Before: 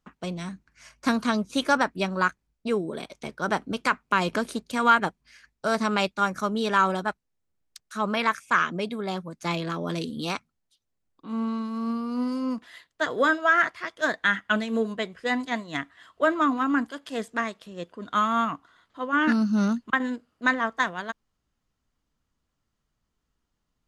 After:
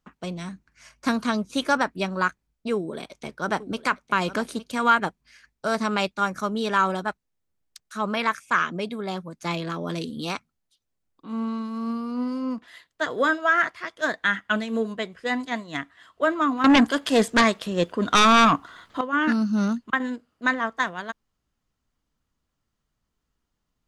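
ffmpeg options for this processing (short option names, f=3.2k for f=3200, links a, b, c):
-filter_complex "[0:a]asettb=1/sr,asplit=3[a][b][c];[a]atrim=end=2.744[d];[b]atrim=start=2.74:end=4.71,asetpts=PTS-STARTPTS,afade=t=in:d=0.004:c=qsin,afade=t=out:st=1.966:d=0.004:c=qsin,aecho=1:1:861:0.178,atrim=end_sample=86877[e];[c]atrim=start=4.706[f];[d][e]acrossfade=d=0.004:c1=hsin:c2=qsin[g];[g][f]acrossfade=d=0.004:c1=qsin:c2=hsin,asettb=1/sr,asplit=3[h][i][j];[h]atrim=end=12.114[k];[i]atrim=start=12.11:end=12.68,asetpts=PTS-STARTPTS,afade=t=in:d=0.004:c=qsin,afade=t=out:st=0.566:d=0.004:c=qsin,highshelf=f=6.2k:g=-10[l];[j]atrim=start=12.676[m];[k][l]acrossfade=d=0.004:c1=hsin:c2=qsin[n];[n][m]acrossfade=d=0.004:c1=qsin:c2=hsin,asettb=1/sr,asplit=3[o][p][q];[o]atrim=end=16.644[r];[p]atrim=start=16.64:end=19.01,asetpts=PTS-STARTPTS,afade=t=in:d=0.004:c=qsin,afade=t=out:st=2.366:d=0.004:c=qsin,aeval=exprs='0.251*sin(PI/2*3.16*val(0)/0.251)':c=same[s];[q]atrim=start=19.006[t];[r][s]acrossfade=d=0.004:c1=hsin:c2=qsin[u];[u][t]acrossfade=d=0.004:c1=qsin:c2=hsin"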